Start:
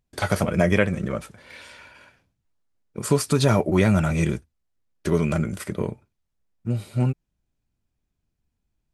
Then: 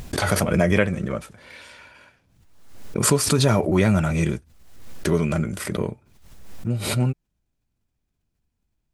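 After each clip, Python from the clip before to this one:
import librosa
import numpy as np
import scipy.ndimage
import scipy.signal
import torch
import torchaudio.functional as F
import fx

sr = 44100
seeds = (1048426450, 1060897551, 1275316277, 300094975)

y = fx.pre_swell(x, sr, db_per_s=56.0)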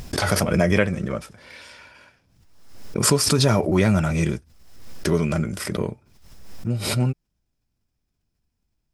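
y = fx.peak_eq(x, sr, hz=5200.0, db=9.0, octaves=0.2)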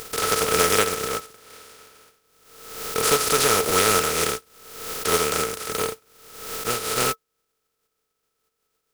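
y = fx.spec_flatten(x, sr, power=0.18)
y = fx.small_body(y, sr, hz=(450.0, 1300.0), ring_ms=75, db=18)
y = F.gain(torch.from_numpy(y), -3.5).numpy()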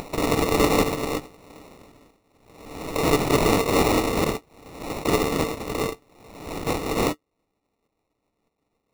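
y = fx.sample_hold(x, sr, seeds[0], rate_hz=1600.0, jitter_pct=0)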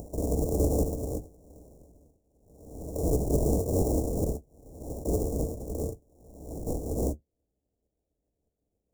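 y = fx.octave_divider(x, sr, octaves=2, level_db=3.0)
y = scipy.signal.sosfilt(scipy.signal.ellip(3, 1.0, 70, [640.0, 6700.0], 'bandstop', fs=sr, output='sos'), y)
y = F.gain(torch.from_numpy(y), -6.5).numpy()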